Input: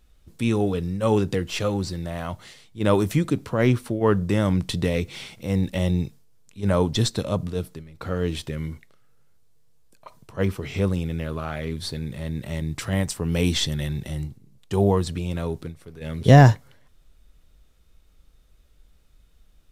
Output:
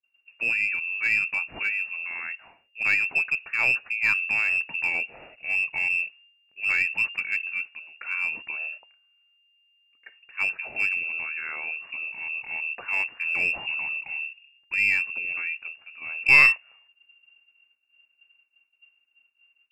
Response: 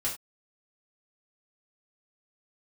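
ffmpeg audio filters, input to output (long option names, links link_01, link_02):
-filter_complex "[0:a]lowpass=frequency=2400:width_type=q:width=0.5098,lowpass=frequency=2400:width_type=q:width=0.6013,lowpass=frequency=2400:width_type=q:width=0.9,lowpass=frequency=2400:width_type=q:width=2.563,afreqshift=-2800,agate=range=-33dB:threshold=-47dB:ratio=3:detection=peak,asplit=2[link_01][link_02];[link_02]aeval=exprs='clip(val(0),-1,0.126)':channel_layout=same,volume=-5.5dB[link_03];[link_01][link_03]amix=inputs=2:normalize=0,volume=-7dB"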